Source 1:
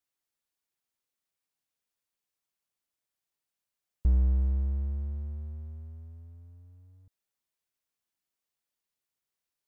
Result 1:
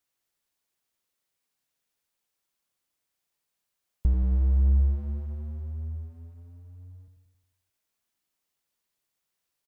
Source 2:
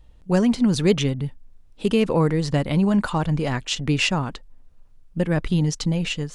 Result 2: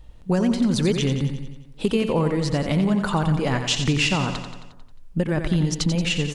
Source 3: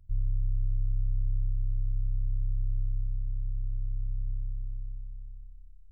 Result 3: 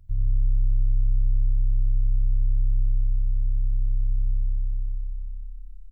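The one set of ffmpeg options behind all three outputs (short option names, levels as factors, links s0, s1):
-filter_complex "[0:a]acompressor=threshold=0.0631:ratio=4,asplit=2[s0][s1];[s1]aecho=0:1:89|178|267|356|445|534|623:0.398|0.231|0.134|0.0777|0.0451|0.0261|0.0152[s2];[s0][s2]amix=inputs=2:normalize=0,volume=1.78"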